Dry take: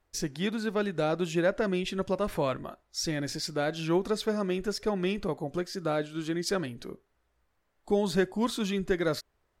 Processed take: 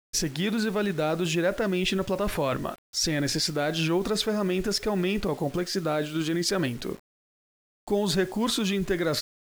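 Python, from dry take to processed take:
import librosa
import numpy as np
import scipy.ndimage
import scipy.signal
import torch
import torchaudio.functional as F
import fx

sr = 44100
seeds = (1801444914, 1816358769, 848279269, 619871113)

p1 = fx.peak_eq(x, sr, hz=2700.0, db=2.5, octaves=0.73)
p2 = fx.over_compress(p1, sr, threshold_db=-33.0, ratio=-0.5)
p3 = p1 + (p2 * 10.0 ** (-0.5 / 20.0))
y = fx.quant_dither(p3, sr, seeds[0], bits=8, dither='none')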